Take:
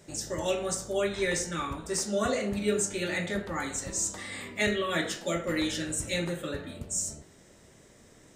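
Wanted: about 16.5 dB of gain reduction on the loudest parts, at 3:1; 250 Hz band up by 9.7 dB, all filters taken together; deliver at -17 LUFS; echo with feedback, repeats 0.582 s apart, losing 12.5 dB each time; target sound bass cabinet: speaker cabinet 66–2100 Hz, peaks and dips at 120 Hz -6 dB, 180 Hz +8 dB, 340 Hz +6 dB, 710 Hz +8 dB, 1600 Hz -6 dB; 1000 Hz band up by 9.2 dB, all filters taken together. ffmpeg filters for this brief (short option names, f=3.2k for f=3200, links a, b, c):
-af "equalizer=f=250:t=o:g=7,equalizer=f=1k:t=o:g=9,acompressor=threshold=-42dB:ratio=3,highpass=f=66:w=0.5412,highpass=f=66:w=1.3066,equalizer=f=120:t=q:w=4:g=-6,equalizer=f=180:t=q:w=4:g=8,equalizer=f=340:t=q:w=4:g=6,equalizer=f=710:t=q:w=4:g=8,equalizer=f=1.6k:t=q:w=4:g=-6,lowpass=f=2.1k:w=0.5412,lowpass=f=2.1k:w=1.3066,aecho=1:1:582|1164|1746:0.237|0.0569|0.0137,volume=21.5dB"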